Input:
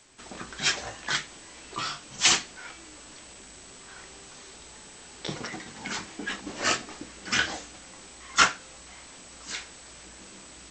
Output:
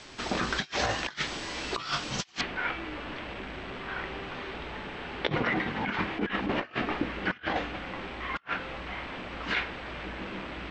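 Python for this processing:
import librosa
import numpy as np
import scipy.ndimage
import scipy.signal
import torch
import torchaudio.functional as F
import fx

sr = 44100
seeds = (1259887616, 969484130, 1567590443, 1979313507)

y = fx.lowpass(x, sr, hz=fx.steps((0.0, 5400.0), (2.41, 2900.0)), slope=24)
y = fx.over_compress(y, sr, threshold_db=-38.0, ratio=-0.5)
y = F.gain(torch.from_numpy(y), 6.5).numpy()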